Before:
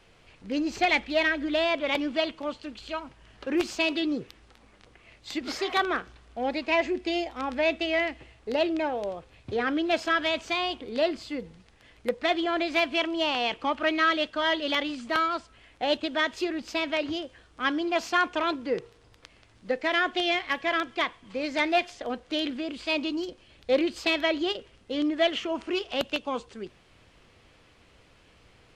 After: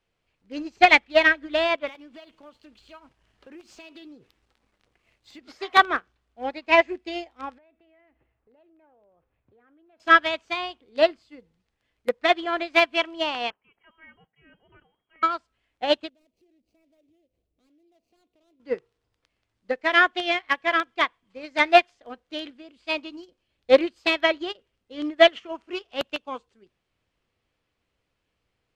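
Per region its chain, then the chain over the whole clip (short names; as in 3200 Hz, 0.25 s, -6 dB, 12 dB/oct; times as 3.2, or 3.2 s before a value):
1.87–5.39 compressor 16:1, threshold -36 dBFS + sample leveller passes 2
7.58–10 EQ curve 1400 Hz 0 dB, 2200 Hz -5 dB, 8300 Hz -27 dB + compressor 4:1, threshold -41 dBFS
13.5–15.23 differentiator + inverted band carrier 3500 Hz
16.09–18.6 median filter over 25 samples + compressor 2.5:1, threshold -50 dBFS + band shelf 1200 Hz -12.5 dB 1.3 oct
whole clip: dynamic EQ 1300 Hz, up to +5 dB, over -37 dBFS, Q 0.71; upward expander 2.5:1, over -35 dBFS; gain +8 dB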